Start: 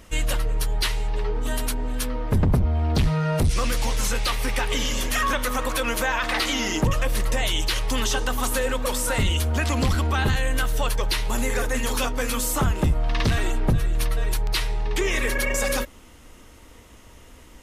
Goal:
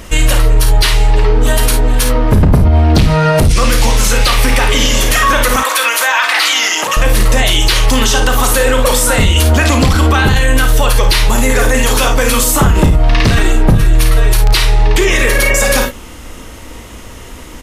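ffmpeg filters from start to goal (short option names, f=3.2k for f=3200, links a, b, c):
-filter_complex "[0:a]asettb=1/sr,asplit=3[a][b][c];[a]atrim=end=5.564[d];[b]atrim=start=5.56:end=6.97,asetpts=PTS-STARTPTS,afade=t=in:d=0.004:c=qsin,afade=t=out:st=1.406:d=0.004:c=qsin,highpass=930[e];[c]atrim=start=6.966[f];[d][e]acrossfade=d=0.004:c1=hsin:c2=qsin[g];[g][f]acrossfade=d=0.004:c1=qsin:c2=hsin,asplit=2[h][i];[i]aecho=0:1:35|54|70:0.335|0.335|0.178[j];[h][j]amix=inputs=2:normalize=0,alimiter=level_in=17dB:limit=-1dB:release=50:level=0:latency=1,volume=-1dB"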